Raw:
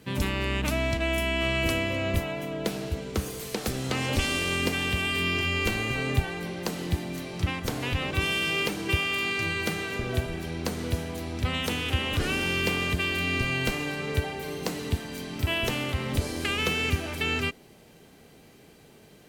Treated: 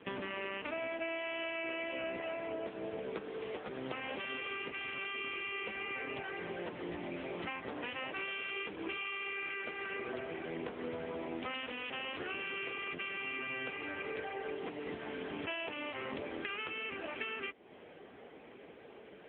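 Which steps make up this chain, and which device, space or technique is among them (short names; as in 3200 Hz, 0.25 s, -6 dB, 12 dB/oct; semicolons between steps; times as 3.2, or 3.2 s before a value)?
voicemail (BPF 340–2600 Hz; compressor 10:1, threshold -41 dBFS, peak gain reduction 16.5 dB; gain +6 dB; AMR-NB 6.7 kbps 8000 Hz)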